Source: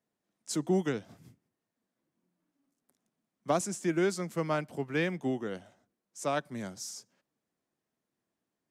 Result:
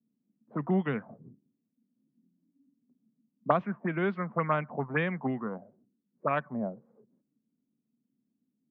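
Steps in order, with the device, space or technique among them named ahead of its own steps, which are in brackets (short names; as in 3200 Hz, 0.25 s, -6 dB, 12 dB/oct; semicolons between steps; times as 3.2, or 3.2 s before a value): envelope filter bass rig (envelope low-pass 270–3500 Hz up, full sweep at -25 dBFS; speaker cabinet 70–2100 Hz, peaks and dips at 91 Hz -10 dB, 140 Hz +5 dB, 220 Hz +7 dB, 330 Hz -7 dB, 1100 Hz +6 dB); 5.27–6.31 bell 790 Hz -4 dB 2.1 oct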